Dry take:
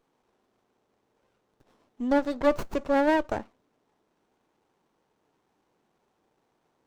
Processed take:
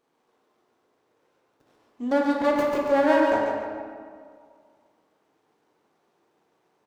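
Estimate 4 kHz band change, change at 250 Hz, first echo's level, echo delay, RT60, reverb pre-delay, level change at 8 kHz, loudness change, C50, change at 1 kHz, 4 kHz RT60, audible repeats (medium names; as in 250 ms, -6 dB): +3.0 dB, +2.5 dB, -5.5 dB, 142 ms, 2.0 s, 15 ms, no reading, +3.0 dB, -1.0 dB, +4.5 dB, 1.1 s, 1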